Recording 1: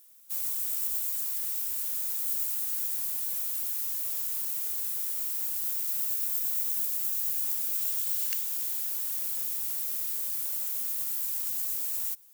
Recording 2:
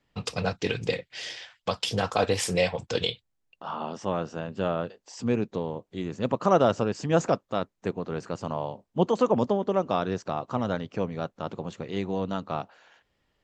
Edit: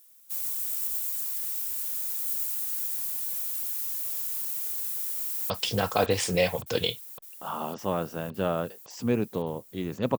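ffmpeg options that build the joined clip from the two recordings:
ffmpeg -i cue0.wav -i cue1.wav -filter_complex "[0:a]apad=whole_dur=10.18,atrim=end=10.18,atrim=end=5.502[link_01];[1:a]atrim=start=1.698:end=6.38[link_02];[link_01][link_02]acrossfade=duration=0.004:curve1=hsin:curve2=hsin,asplit=2[link_03][link_04];[link_04]afade=type=in:start_time=4.98:duration=0.01,afade=type=out:start_time=5.5:duration=0.01,aecho=0:1:560|1120|1680|2240|2800|3360|3920|4480|5040|5600|6160|6720:0.375837|0.30067|0.240536|0.192429|0.153943|0.123154|0.0985235|0.0788188|0.0630551|0.050444|0.0403552|0.0322842[link_05];[link_03][link_05]amix=inputs=2:normalize=0" out.wav

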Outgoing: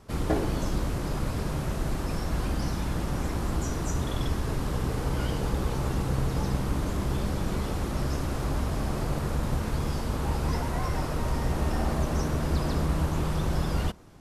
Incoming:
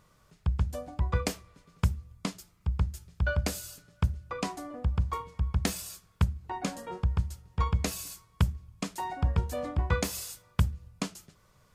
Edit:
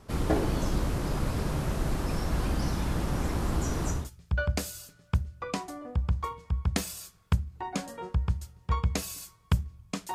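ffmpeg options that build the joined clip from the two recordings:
ffmpeg -i cue0.wav -i cue1.wav -filter_complex "[0:a]apad=whole_dur=10.14,atrim=end=10.14,atrim=end=4.1,asetpts=PTS-STARTPTS[link_01];[1:a]atrim=start=2.77:end=9.03,asetpts=PTS-STARTPTS[link_02];[link_01][link_02]acrossfade=duration=0.22:curve1=tri:curve2=tri" out.wav

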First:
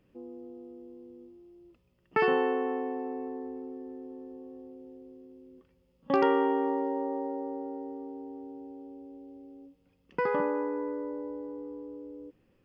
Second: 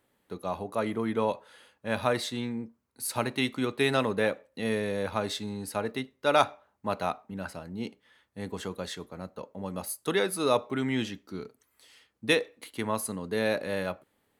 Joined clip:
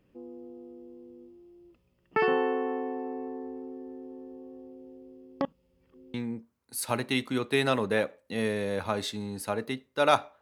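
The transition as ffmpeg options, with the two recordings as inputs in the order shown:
ffmpeg -i cue0.wav -i cue1.wav -filter_complex "[0:a]apad=whole_dur=10.41,atrim=end=10.41,asplit=2[link_01][link_02];[link_01]atrim=end=5.412[link_03];[link_02]atrim=start=5.408:end=6.142,asetpts=PTS-STARTPTS,areverse[link_04];[1:a]atrim=start=2.408:end=6.68[link_05];[link_03][link_04]acrossfade=duration=0.004:curve1=hsin:curve2=hsin[link_06];[link_06][link_05]acrossfade=duration=0.004:curve1=hsin:curve2=hsin" out.wav

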